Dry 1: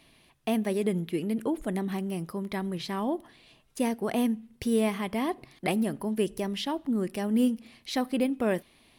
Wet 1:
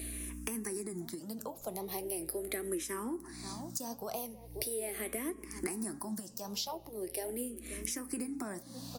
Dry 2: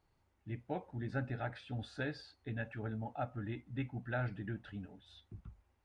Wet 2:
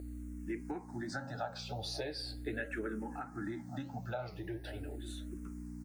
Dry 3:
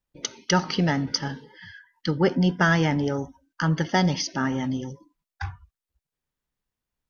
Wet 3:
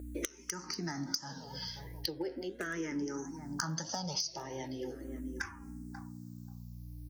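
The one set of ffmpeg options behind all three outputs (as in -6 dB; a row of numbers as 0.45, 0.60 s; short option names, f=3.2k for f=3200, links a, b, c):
-filter_complex "[0:a]acrossover=split=210[a][b];[b]acompressor=threshold=-28dB:ratio=6[c];[a][c]amix=inputs=2:normalize=0,bandreject=f=272.4:t=h:w=4,bandreject=f=544.8:t=h:w=4,bandreject=f=817.2:t=h:w=4,bandreject=f=1.0896k:t=h:w=4,bandreject=f=1.362k:t=h:w=4,bandreject=f=1.6344k:t=h:w=4,bandreject=f=1.9068k:t=h:w=4,bandreject=f=2.1792k:t=h:w=4,bandreject=f=2.4516k:t=h:w=4,bandreject=f=2.724k:t=h:w=4,bandreject=f=2.9964k:t=h:w=4,bandreject=f=3.2688k:t=h:w=4,flanger=delay=6.2:depth=8.3:regen=72:speed=1.5:shape=triangular,acrossover=split=260[d][e];[e]volume=25.5dB,asoftclip=hard,volume=-25.5dB[f];[d][f]amix=inputs=2:normalize=0,equalizer=f=340:w=3.2:g=6.5,asplit=2[g][h];[h]adelay=535,lowpass=f=850:p=1,volume=-20dB,asplit=2[i][j];[j]adelay=535,lowpass=f=850:p=1,volume=0.18[k];[i][k]amix=inputs=2:normalize=0[l];[g][l]amix=inputs=2:normalize=0,aeval=exprs='val(0)+0.00501*(sin(2*PI*60*n/s)+sin(2*PI*2*60*n/s)/2+sin(2*PI*3*60*n/s)/3+sin(2*PI*4*60*n/s)/4+sin(2*PI*5*60*n/s)/5)':c=same,aexciter=amount=12.9:drive=6.5:freq=4.8k,bass=f=250:g=-13,treble=f=4k:g=-11,acompressor=threshold=-49dB:ratio=10,asplit=2[m][n];[n]afreqshift=-0.4[o];[m][o]amix=inputs=2:normalize=1,volume=16.5dB"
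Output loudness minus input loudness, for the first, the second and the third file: -9.0, 0.0, -15.0 LU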